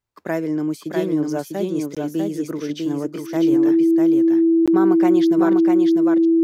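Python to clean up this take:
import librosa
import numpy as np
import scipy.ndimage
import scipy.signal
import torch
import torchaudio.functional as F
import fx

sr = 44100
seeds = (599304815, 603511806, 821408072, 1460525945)

y = fx.notch(x, sr, hz=330.0, q=30.0)
y = fx.fix_interpolate(y, sr, at_s=(1.95, 4.66), length_ms=16.0)
y = fx.fix_echo_inverse(y, sr, delay_ms=648, level_db=-3.5)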